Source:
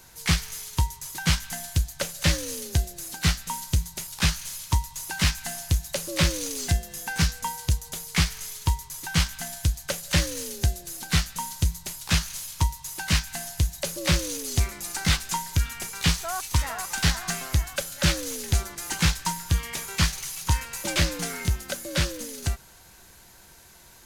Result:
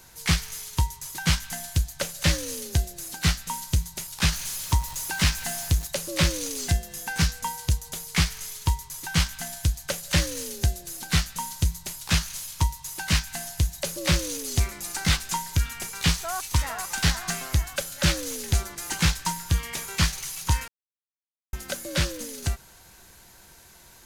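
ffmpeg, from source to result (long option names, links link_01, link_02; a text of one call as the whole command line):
ffmpeg -i in.wav -filter_complex "[0:a]asettb=1/sr,asplit=3[link_01][link_02][link_03];[link_01]atrim=end=4.324[link_04];[link_02]atrim=start=4.32:end=5.87,asetpts=PTS-STARTPTS,afade=type=in:duration=0.004:curve=qsin,afade=type=out:start_time=1.546:duration=0.004:curve=qsin,aeval=exprs='val(0)+0.5*0.0188*sgn(val(0))':channel_layout=same[link_05];[link_03]atrim=start=5.866[link_06];[link_04][link_05]acrossfade=duration=0.004:curve1=hsin:curve2=qsin[link_07];[link_07][link_06]acrossfade=duration=0.004:curve1=qsin:curve2=hsin,asplit=3[link_08][link_09][link_10];[link_08]atrim=end=20.68,asetpts=PTS-STARTPTS,afade=type=out:start_time=20.676:duration=0.004:curve=hsin[link_11];[link_09]atrim=start=20.68:end=21.53,asetpts=PTS-STARTPTS,volume=0[link_12];[link_10]atrim=start=21.53,asetpts=PTS-STARTPTS,afade=type=in:duration=0.004:curve=hsin[link_13];[link_11][link_12][link_13]concat=n=3:v=0:a=1" out.wav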